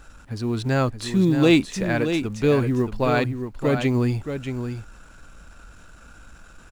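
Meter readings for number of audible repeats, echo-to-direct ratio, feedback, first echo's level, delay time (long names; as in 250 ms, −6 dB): 1, −8.0 dB, repeats not evenly spaced, −8.0 dB, 624 ms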